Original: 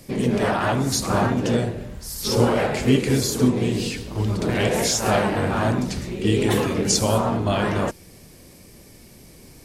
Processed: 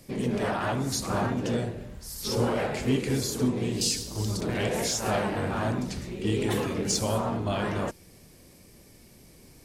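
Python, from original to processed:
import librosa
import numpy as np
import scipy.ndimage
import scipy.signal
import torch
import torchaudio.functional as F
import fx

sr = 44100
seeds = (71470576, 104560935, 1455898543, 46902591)

y = 10.0 ** (-8.0 / 20.0) * np.tanh(x / 10.0 ** (-8.0 / 20.0))
y = fx.high_shelf_res(y, sr, hz=3700.0, db=13.0, q=1.5, at=(3.81, 4.41))
y = y * librosa.db_to_amplitude(-6.5)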